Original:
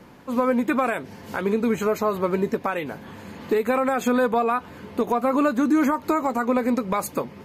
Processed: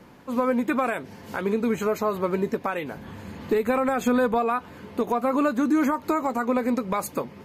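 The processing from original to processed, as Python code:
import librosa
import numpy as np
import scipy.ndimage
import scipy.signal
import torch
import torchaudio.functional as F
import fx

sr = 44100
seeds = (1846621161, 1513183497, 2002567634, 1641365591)

y = fx.low_shelf(x, sr, hz=110.0, db=11.5, at=(2.97, 4.37))
y = F.gain(torch.from_numpy(y), -2.0).numpy()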